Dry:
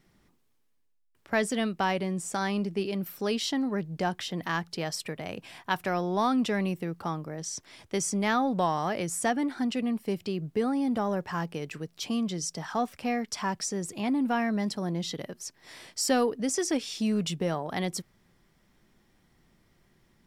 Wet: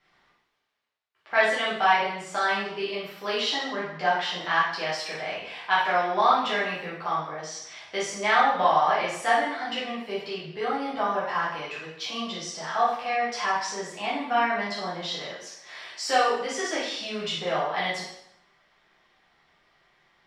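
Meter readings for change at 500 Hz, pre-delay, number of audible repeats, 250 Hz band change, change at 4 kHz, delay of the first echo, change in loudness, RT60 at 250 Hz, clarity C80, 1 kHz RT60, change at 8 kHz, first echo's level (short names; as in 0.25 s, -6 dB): +3.0 dB, 4 ms, none, -9.0 dB, +6.5 dB, none, +3.5 dB, 0.80 s, 6.0 dB, 0.80 s, -4.0 dB, none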